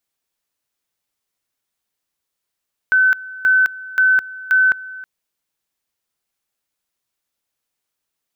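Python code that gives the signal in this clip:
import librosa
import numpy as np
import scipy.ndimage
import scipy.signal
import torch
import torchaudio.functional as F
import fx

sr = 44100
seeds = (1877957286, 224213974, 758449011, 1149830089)

y = fx.two_level_tone(sr, hz=1520.0, level_db=-10.0, drop_db=19.5, high_s=0.21, low_s=0.32, rounds=4)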